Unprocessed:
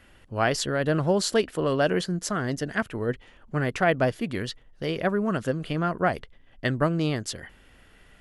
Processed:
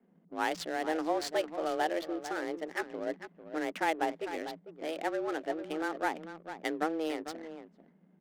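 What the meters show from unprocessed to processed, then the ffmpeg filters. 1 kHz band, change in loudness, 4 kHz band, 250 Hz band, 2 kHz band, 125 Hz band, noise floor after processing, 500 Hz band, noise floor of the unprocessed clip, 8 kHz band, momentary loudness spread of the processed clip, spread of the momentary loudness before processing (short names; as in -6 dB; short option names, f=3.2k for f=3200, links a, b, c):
-4.0 dB, -8.5 dB, -9.5 dB, -9.0 dB, -7.5 dB, -29.0 dB, -65 dBFS, -8.0 dB, -56 dBFS, -12.5 dB, 11 LU, 10 LU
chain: -af "aecho=1:1:448:0.282,afreqshift=160,adynamicsmooth=sensitivity=6.5:basefreq=520,volume=-8.5dB"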